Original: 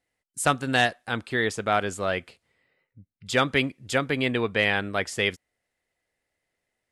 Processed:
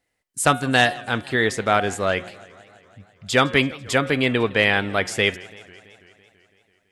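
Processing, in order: de-hum 180.6 Hz, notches 22; warbling echo 0.166 s, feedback 70%, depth 216 cents, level -22 dB; gain +5 dB

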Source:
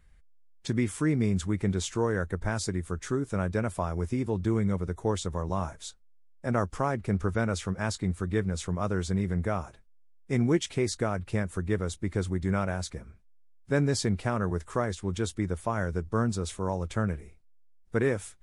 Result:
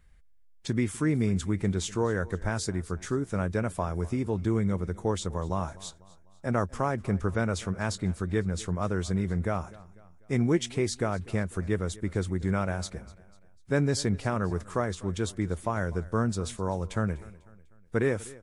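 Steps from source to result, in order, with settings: feedback echo 0.248 s, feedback 46%, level -21 dB

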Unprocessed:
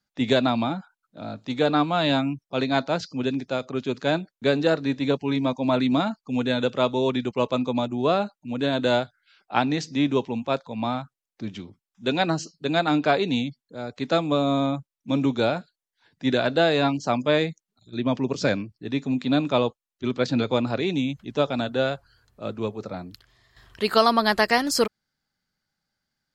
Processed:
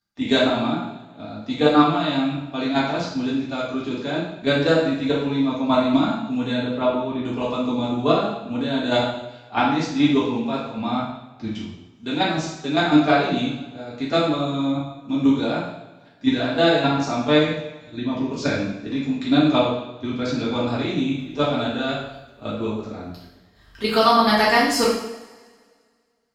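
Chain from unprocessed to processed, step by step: bell 85 Hz +7 dB 0.31 oct; notch 530 Hz, Q 12; level quantiser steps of 10 dB; 6.58–7.25 tape spacing loss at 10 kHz 27 dB; two-slope reverb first 0.75 s, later 2 s, from -18 dB, DRR -7 dB; gain -1 dB

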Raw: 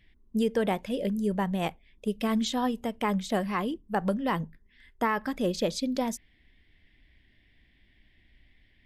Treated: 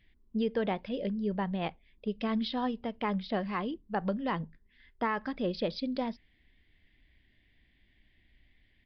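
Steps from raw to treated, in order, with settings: downsampling 11025 Hz; gain -4 dB

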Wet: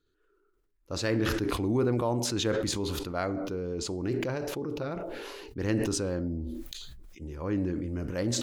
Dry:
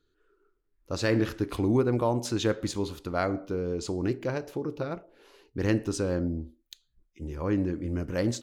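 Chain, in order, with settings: sustainer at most 21 dB/s; gain -3.5 dB

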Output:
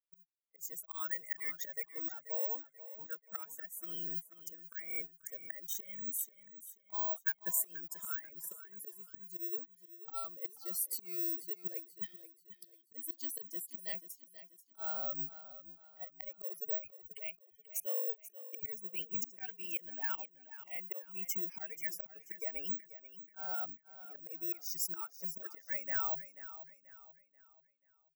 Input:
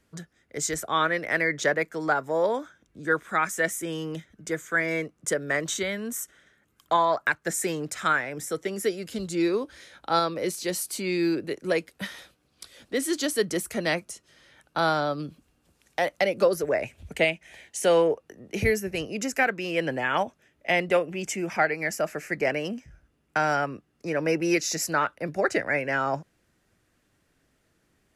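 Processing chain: per-bin expansion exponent 2; notch 3900 Hz, Q 9.1; careless resampling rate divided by 2×, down none, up zero stuff; high shelf 2100 Hz -10 dB; in parallel at 0 dB: vocal rider within 3 dB 0.5 s; on the sum: auto swell 0.591 s; compressor 6:1, threshold -32 dBFS, peak gain reduction 9 dB; tilt +3.5 dB/oct; on a send: feedback echo 0.485 s, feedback 38%, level -14 dB; on the sum: gain -6.5 dB

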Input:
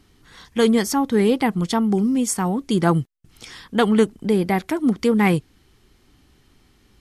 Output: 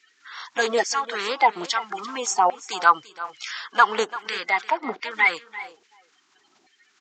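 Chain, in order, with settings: bin magnitudes rounded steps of 30 dB; downsampling 16000 Hz; speakerphone echo 0.38 s, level -29 dB; LFO high-pass saw down 1.2 Hz 640–2000 Hz; in parallel at -2 dB: compressor, threshold -33 dBFS, peak gain reduction 20.5 dB; 4.7–5.11 on the sum: air absorption 220 m; on a send: echo 0.341 s -16.5 dB

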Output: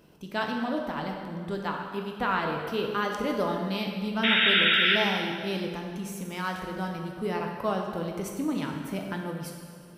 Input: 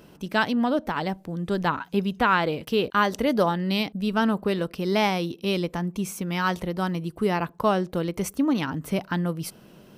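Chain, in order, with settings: 1.57–2.13 low shelf 180 Hz -12 dB; 4.23–4.96 painted sound noise 1300–3800 Hz -16 dBFS; plate-style reverb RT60 2 s, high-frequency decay 0.8×, DRR 1 dB; gain -8 dB

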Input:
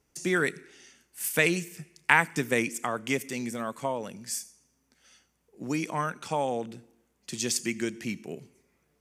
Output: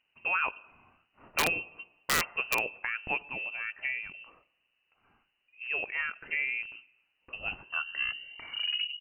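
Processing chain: tape stop at the end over 1.79 s; inverted band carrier 2900 Hz; wrapped overs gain 13 dB; gain -3.5 dB

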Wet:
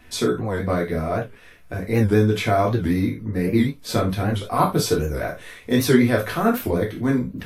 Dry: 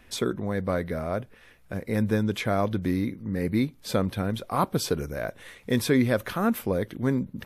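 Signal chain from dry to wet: non-linear reverb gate 0.11 s falling, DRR -2.5 dB; record warp 78 rpm, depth 160 cents; gain +1.5 dB

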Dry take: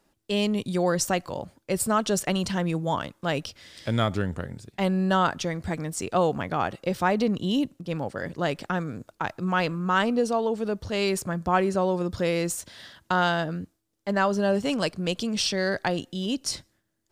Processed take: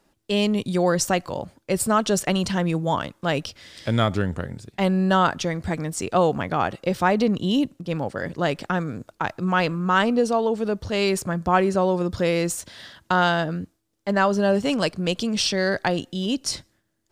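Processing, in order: high shelf 9800 Hz -3.5 dB; gain +3.5 dB

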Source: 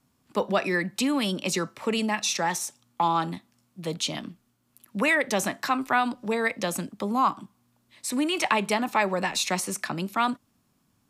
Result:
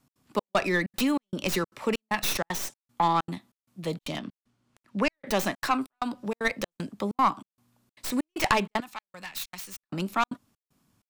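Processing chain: tracing distortion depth 0.13 ms; 6.02–6.45 compressor, threshold -26 dBFS, peak gain reduction 4.5 dB; 8.8–9.83 passive tone stack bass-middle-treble 5-5-5; step gate "x.xxx..xxx" 192 bpm -60 dB; 4.18–5.27 air absorption 65 m

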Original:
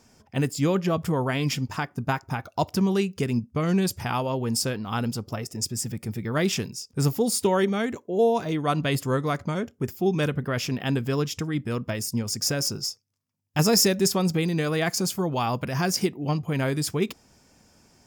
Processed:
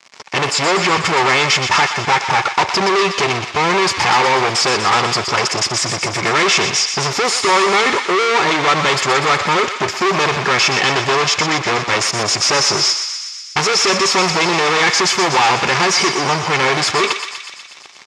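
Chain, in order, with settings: comb 2.3 ms, depth 79%; in parallel at -1 dB: compressor, threshold -34 dBFS, peak gain reduction 19 dB; on the sum: fuzz box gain 38 dB, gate -45 dBFS; speaker cabinet 270–6500 Hz, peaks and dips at 290 Hz -8 dB, 480 Hz -6 dB, 1100 Hz +6 dB, 2200 Hz +5 dB; on a send: thinning echo 0.122 s, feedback 72%, high-pass 1100 Hz, level -7 dB; on the sum: gain +1.5 dB

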